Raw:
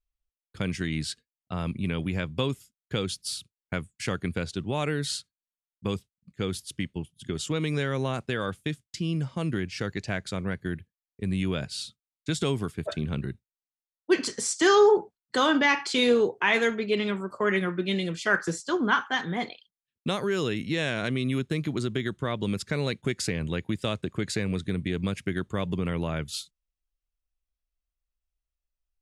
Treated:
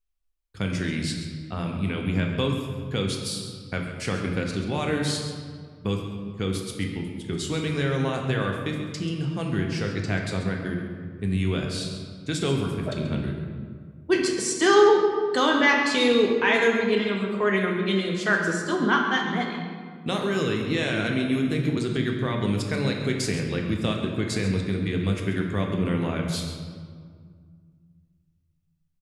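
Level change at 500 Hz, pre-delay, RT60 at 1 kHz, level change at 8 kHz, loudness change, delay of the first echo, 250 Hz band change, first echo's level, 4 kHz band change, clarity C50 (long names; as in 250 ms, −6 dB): +3.0 dB, 3 ms, 1.8 s, +1.5 dB, +3.0 dB, 135 ms, +4.0 dB, −11.5 dB, +2.0 dB, 3.5 dB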